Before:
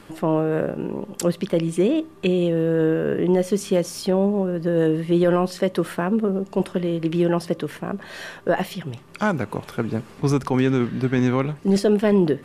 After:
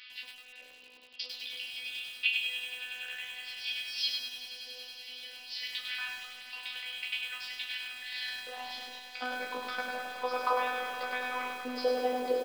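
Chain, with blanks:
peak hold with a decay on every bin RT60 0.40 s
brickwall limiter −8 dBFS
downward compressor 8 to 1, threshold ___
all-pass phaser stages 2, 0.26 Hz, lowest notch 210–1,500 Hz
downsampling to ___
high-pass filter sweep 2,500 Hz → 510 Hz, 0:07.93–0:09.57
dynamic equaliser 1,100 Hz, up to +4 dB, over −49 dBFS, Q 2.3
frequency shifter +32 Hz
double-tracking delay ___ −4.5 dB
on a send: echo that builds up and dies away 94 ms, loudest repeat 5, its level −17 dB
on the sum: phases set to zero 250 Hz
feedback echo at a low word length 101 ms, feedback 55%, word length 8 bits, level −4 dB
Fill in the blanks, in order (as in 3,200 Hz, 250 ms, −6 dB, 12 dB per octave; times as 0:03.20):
−23 dBFS, 11,025 Hz, 13 ms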